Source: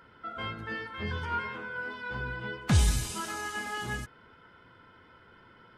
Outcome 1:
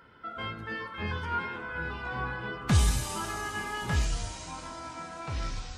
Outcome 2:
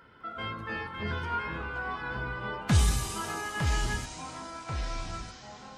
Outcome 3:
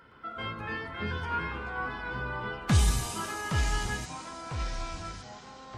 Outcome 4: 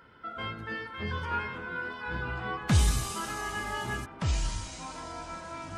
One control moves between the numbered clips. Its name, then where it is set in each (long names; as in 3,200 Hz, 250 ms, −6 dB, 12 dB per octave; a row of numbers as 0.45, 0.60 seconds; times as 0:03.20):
delay with pitch and tempo change per echo, delay time: 499, 206, 116, 822 milliseconds